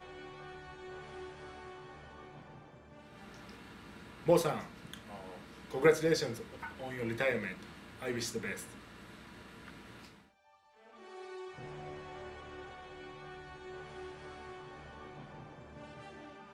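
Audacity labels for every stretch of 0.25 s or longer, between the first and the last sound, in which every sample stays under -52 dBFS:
10.220000	10.810000	silence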